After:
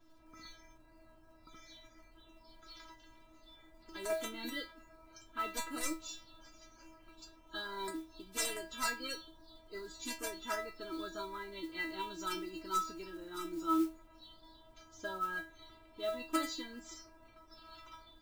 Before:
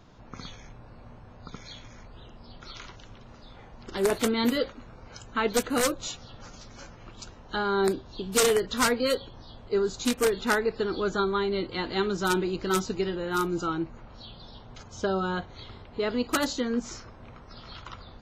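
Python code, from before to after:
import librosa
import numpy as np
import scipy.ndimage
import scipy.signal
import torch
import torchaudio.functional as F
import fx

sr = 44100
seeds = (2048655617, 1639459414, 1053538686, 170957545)

y = fx.stiff_resonator(x, sr, f0_hz=320.0, decay_s=0.32, stiffness=0.002)
y = fx.mod_noise(y, sr, seeds[0], snr_db=23)
y = y * 10.0 ** (4.5 / 20.0)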